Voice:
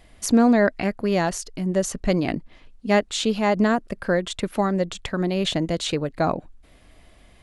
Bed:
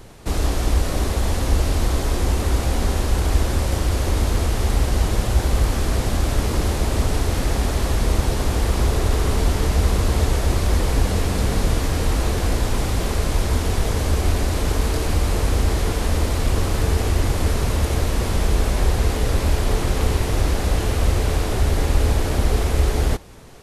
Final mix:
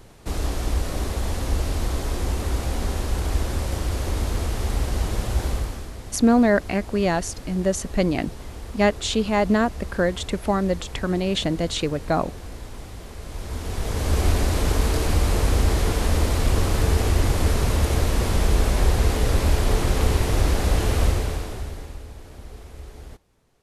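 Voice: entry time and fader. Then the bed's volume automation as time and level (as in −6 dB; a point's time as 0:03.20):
5.90 s, 0.0 dB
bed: 0:05.49 −5 dB
0:05.95 −16.5 dB
0:13.16 −16.5 dB
0:14.20 −0.5 dB
0:21.03 −0.5 dB
0:22.07 −21.5 dB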